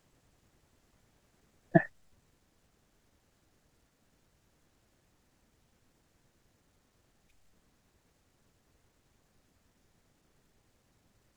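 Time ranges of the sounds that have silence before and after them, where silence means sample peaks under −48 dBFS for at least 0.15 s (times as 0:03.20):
0:01.74–0:01.88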